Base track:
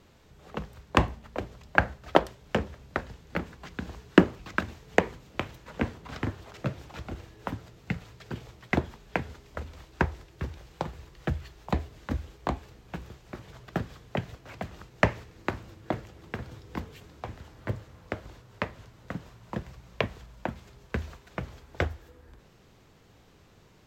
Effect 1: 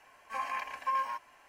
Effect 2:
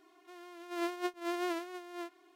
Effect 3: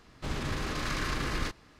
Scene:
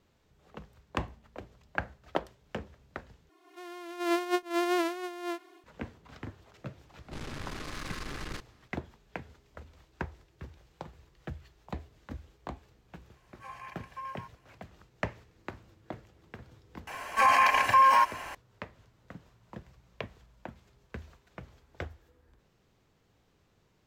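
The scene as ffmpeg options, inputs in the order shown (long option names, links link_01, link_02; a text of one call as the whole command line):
ffmpeg -i bed.wav -i cue0.wav -i cue1.wav -i cue2.wav -filter_complex "[1:a]asplit=2[link_01][link_02];[0:a]volume=-11dB[link_03];[2:a]dynaudnorm=framelen=120:gausssize=3:maxgain=8.5dB[link_04];[3:a]aeval=exprs='(tanh(50.1*val(0)+0.8)-tanh(0.8))/50.1':channel_layout=same[link_05];[link_02]alimiter=level_in=31.5dB:limit=-1dB:release=50:level=0:latency=1[link_06];[link_03]asplit=2[link_07][link_08];[link_07]atrim=end=3.294[link_09];[link_04]atrim=end=2.35,asetpts=PTS-STARTPTS,volume=-1.5dB[link_10];[link_08]atrim=start=5.636[link_11];[link_05]atrim=end=1.79,asetpts=PTS-STARTPTS,volume=-1.5dB,afade=type=in:duration=0.004:curve=hsin,afade=type=out:start_time=1.786:duration=0.004:curve=hsin,adelay=6890[link_12];[link_01]atrim=end=1.48,asetpts=PTS-STARTPTS,volume=-10dB,afade=type=in:duration=0.004:curve=hsin,afade=type=out:start_time=1.476:duration=0.004:curve=hsin,adelay=13100[link_13];[link_06]atrim=end=1.48,asetpts=PTS-STARTPTS,volume=-12.5dB,afade=type=in:duration=0.004:curve=hsin,afade=type=out:start_time=1.476:duration=0.004:curve=hsin,adelay=16870[link_14];[link_09][link_10]acrossfade=duration=0.004:curve1=hsin:curve2=hsin[link_15];[link_15][link_11]acrossfade=duration=0.004:curve1=hsin:curve2=hsin[link_16];[link_16][link_12][link_13][link_14]amix=inputs=4:normalize=0" out.wav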